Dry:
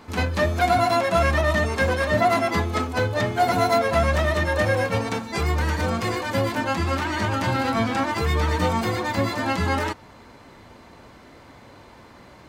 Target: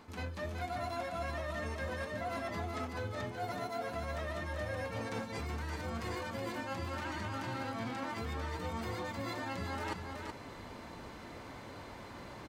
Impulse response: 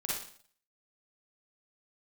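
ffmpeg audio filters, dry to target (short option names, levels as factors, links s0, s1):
-af "areverse,acompressor=threshold=0.0178:ratio=10,areverse,aecho=1:1:374:0.531,volume=0.794"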